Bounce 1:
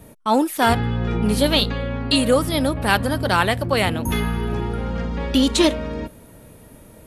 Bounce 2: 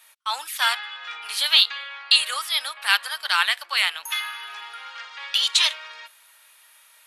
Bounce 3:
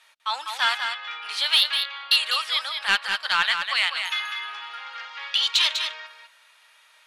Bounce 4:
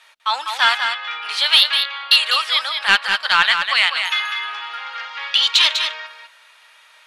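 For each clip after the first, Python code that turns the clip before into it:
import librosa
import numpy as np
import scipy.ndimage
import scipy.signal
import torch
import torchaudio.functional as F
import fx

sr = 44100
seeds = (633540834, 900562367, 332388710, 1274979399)

y1 = scipy.signal.sosfilt(scipy.signal.butter(4, 1100.0, 'highpass', fs=sr, output='sos'), x)
y1 = fx.peak_eq(y1, sr, hz=3500.0, db=8.0, octaves=1.7)
y1 = y1 * librosa.db_to_amplitude(-2.5)
y2 = scipy.signal.sosfilt(scipy.signal.butter(2, 5500.0, 'lowpass', fs=sr, output='sos'), y1)
y2 = 10.0 ** (-8.5 / 20.0) * np.tanh(y2 / 10.0 ** (-8.5 / 20.0))
y2 = y2 + 10.0 ** (-6.5 / 20.0) * np.pad(y2, (int(199 * sr / 1000.0), 0))[:len(y2)]
y3 = fx.high_shelf(y2, sr, hz=6400.0, db=-5.5)
y3 = y3 * librosa.db_to_amplitude(7.5)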